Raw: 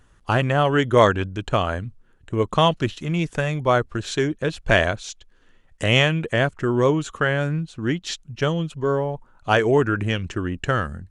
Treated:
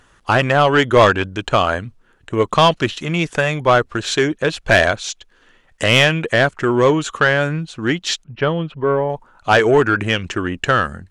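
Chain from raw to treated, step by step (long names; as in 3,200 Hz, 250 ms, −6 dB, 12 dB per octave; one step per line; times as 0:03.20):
low-shelf EQ 370 Hz +3.5 dB
mid-hump overdrive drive 15 dB, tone 7,300 Hz, clips at −1 dBFS
0:08.24–0:09.10: high-frequency loss of the air 370 metres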